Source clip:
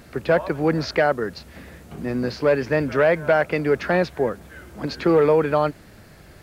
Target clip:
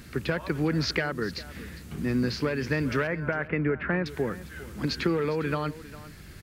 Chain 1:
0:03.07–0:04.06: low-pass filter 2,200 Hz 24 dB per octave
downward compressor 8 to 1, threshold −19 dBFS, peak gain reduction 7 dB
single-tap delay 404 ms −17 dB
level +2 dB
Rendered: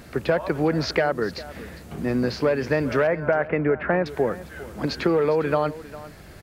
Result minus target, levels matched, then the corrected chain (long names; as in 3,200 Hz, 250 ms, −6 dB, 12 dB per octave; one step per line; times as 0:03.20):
500 Hz band +3.5 dB
0:03.07–0:04.06: low-pass filter 2,200 Hz 24 dB per octave
downward compressor 8 to 1, threshold −19 dBFS, peak gain reduction 7 dB
parametric band 660 Hz −13 dB 1.3 octaves
single-tap delay 404 ms −17 dB
level +2 dB